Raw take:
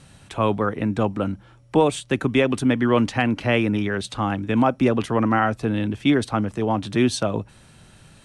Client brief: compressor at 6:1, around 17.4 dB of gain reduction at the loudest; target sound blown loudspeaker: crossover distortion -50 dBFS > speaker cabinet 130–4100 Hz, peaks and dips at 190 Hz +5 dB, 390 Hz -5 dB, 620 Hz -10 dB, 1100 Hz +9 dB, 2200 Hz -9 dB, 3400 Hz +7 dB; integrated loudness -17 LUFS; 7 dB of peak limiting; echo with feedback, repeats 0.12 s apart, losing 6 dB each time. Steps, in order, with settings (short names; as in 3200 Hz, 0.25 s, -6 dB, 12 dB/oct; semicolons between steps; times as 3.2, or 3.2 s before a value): compressor 6:1, threshold -33 dBFS; limiter -27.5 dBFS; feedback echo 0.12 s, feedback 50%, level -6 dB; crossover distortion -50 dBFS; speaker cabinet 130–4100 Hz, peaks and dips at 190 Hz +5 dB, 390 Hz -5 dB, 620 Hz -10 dB, 1100 Hz +9 dB, 2200 Hz -9 dB, 3400 Hz +7 dB; gain +21.5 dB